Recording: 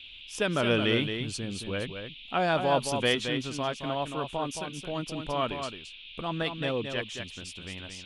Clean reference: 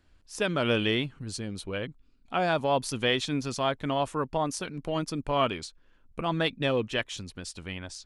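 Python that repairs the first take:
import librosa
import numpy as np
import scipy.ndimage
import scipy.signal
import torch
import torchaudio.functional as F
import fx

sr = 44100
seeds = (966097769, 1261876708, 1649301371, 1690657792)

y = fx.noise_reduce(x, sr, print_start_s=5.69, print_end_s=6.19, reduce_db=13.0)
y = fx.fix_echo_inverse(y, sr, delay_ms=221, level_db=-7.0)
y = fx.fix_level(y, sr, at_s=3.15, step_db=4.0)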